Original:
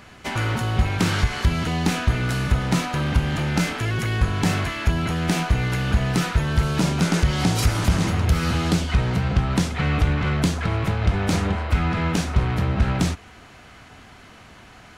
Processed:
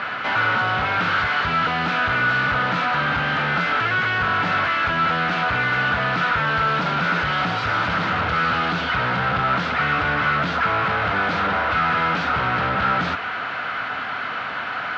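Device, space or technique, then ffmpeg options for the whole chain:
overdrive pedal into a guitar cabinet: -filter_complex "[0:a]asplit=2[a][b];[b]highpass=f=720:p=1,volume=35dB,asoftclip=type=tanh:threshold=-8.5dB[c];[a][c]amix=inputs=2:normalize=0,lowpass=f=2.3k:p=1,volume=-6dB,highpass=94,equalizer=f=220:t=q:w=4:g=-3,equalizer=f=360:t=q:w=4:g=-8,equalizer=f=1.4k:t=q:w=4:g=10,lowpass=f=4.2k:w=0.5412,lowpass=f=4.2k:w=1.3066,volume=-7dB"

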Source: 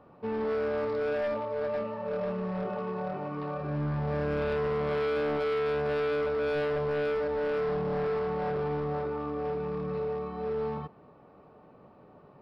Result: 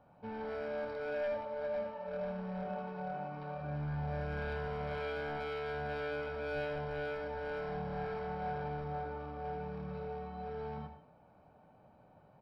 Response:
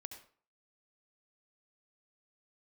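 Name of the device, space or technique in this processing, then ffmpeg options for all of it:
microphone above a desk: -filter_complex "[0:a]aecho=1:1:1.3:0.58[a];[1:a]atrim=start_sample=2205[b];[a][b]afir=irnorm=-1:irlink=0,volume=-3dB"

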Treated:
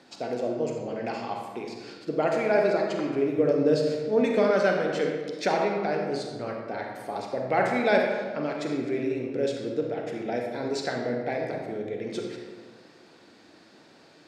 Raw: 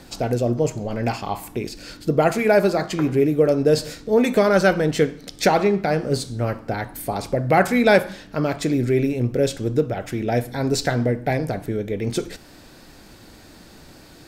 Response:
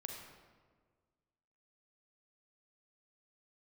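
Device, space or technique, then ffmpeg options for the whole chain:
supermarket ceiling speaker: -filter_complex "[0:a]highpass=250,lowpass=5.4k[a];[1:a]atrim=start_sample=2205[b];[a][b]afir=irnorm=-1:irlink=0,asettb=1/sr,asplit=3[c][d][e];[c]atrim=end=3.384[f];[d]atrim=start=3.38:end=4.51,asetpts=PTS-STARTPTS,afade=t=in:d=0.004:c=qsin,afade=t=out:st=1.126:d=0.004:c=qsin,lowshelf=f=240:g=8[g];[e]atrim=start=4.506[h];[f][g]acrossfade=d=0.004:c1=hsin:c2=qsin[i];[i][h]acrossfade=d=0.004:c1=qsin:c2=hsin,volume=-3.5dB"

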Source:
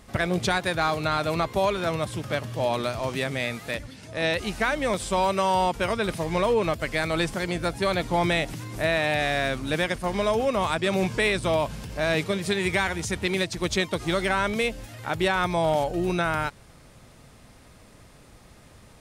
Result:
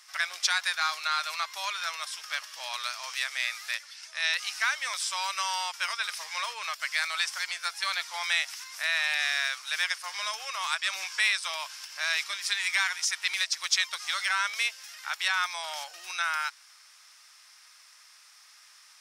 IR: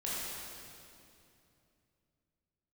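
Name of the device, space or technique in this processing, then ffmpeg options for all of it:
headphones lying on a table: -af "highpass=f=1.2k:w=0.5412,highpass=f=1.2k:w=1.3066,equalizer=f=5.4k:t=o:w=0.42:g=11.5"

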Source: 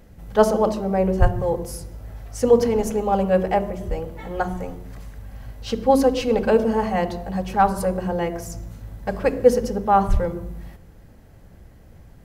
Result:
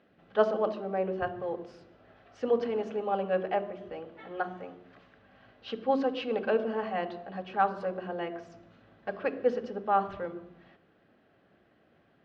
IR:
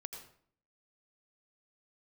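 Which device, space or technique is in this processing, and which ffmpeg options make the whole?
phone earpiece: -af "highpass=370,equalizer=f=500:t=q:w=4:g=-7,equalizer=f=910:t=q:w=4:g=-10,equalizer=f=2.1k:t=q:w=4:g=-6,lowpass=f=3.3k:w=0.5412,lowpass=f=3.3k:w=1.3066,volume=-4dB"

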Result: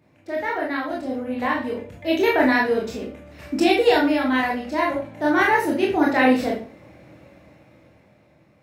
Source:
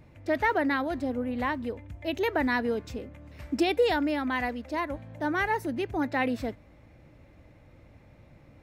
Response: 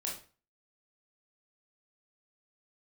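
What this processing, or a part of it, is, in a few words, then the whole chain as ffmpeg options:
far laptop microphone: -filter_complex "[1:a]atrim=start_sample=2205[a];[0:a][a]afir=irnorm=-1:irlink=0,highpass=140,dynaudnorm=f=210:g=13:m=11.5dB,volume=-1.5dB"

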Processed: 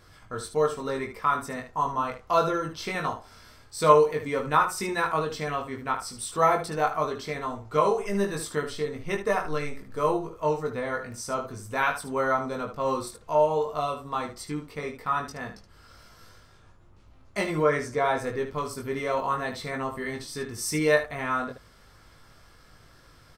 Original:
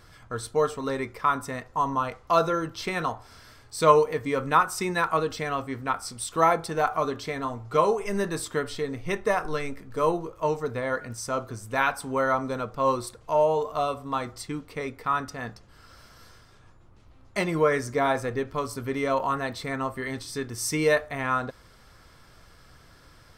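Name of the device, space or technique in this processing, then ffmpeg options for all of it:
slapback doubling: -filter_complex "[0:a]asplit=3[a][b][c];[b]adelay=20,volume=-3.5dB[d];[c]adelay=75,volume=-9dB[e];[a][d][e]amix=inputs=3:normalize=0,asettb=1/sr,asplit=3[f][g][h];[f]atrim=end=17.624[i];[g]atrim=start=17.62:end=18.2,asetpts=PTS-STARTPTS,afade=t=in:d=0.004:c=qsin,afade=t=out:st=0.576:d=0.004:c=qsin,highshelf=f=12k:g=-11[j];[h]atrim=start=18.196[k];[i][j]acrossfade=d=0.004:c1=hsin:c2=qsin[l];[l][k]acrossfade=d=0.004:c1=qsin:c2=hsin,volume=-3dB"

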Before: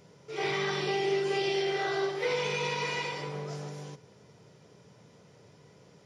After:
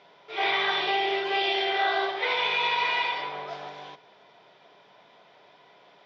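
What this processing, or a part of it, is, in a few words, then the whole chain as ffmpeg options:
phone earpiece: -af "highpass=440,equalizer=f=480:t=q:w=4:g=-7,equalizer=f=700:t=q:w=4:g=9,equalizer=f=1k:t=q:w=4:g=5,equalizer=f=1.6k:t=q:w=4:g=4,equalizer=f=2.3k:t=q:w=4:g=4,equalizer=f=3.5k:t=q:w=4:g=9,lowpass=f=4.1k:w=0.5412,lowpass=f=4.1k:w=1.3066,volume=3.5dB"

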